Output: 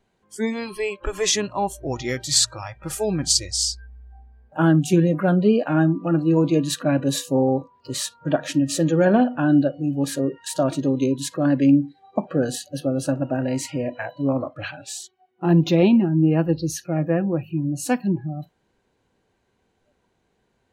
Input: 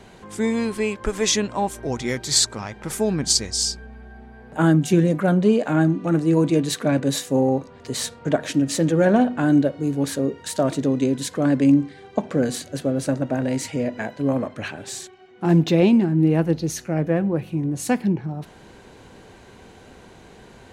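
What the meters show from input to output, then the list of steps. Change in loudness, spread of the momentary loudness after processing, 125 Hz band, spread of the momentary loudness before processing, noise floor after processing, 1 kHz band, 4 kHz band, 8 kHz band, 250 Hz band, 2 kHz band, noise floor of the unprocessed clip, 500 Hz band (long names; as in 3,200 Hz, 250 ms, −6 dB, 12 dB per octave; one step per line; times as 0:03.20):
−0.5 dB, 11 LU, 0.0 dB, 10 LU, −70 dBFS, 0.0 dB, 0.0 dB, 0.0 dB, −0.5 dB, −0.5 dB, −47 dBFS, −0.5 dB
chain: noise reduction from a noise print of the clip's start 23 dB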